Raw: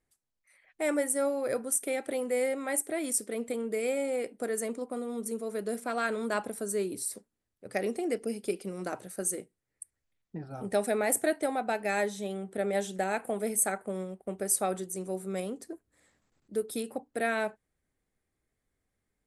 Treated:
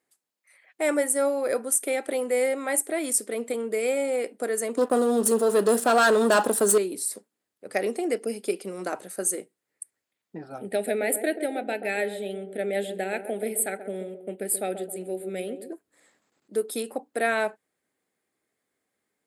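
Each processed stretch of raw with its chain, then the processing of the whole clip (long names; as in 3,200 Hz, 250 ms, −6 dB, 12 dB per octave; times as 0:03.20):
0:04.77–0:06.78: leveller curve on the samples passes 3 + parametric band 2,200 Hz −13 dB 0.28 octaves
0:10.58–0:15.72: phaser with its sweep stopped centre 2,600 Hz, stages 4 + feedback echo with a band-pass in the loop 132 ms, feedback 49%, band-pass 410 Hz, level −8 dB
whole clip: high-pass filter 270 Hz 12 dB per octave; notch filter 5,800 Hz, Q 18; level +5.5 dB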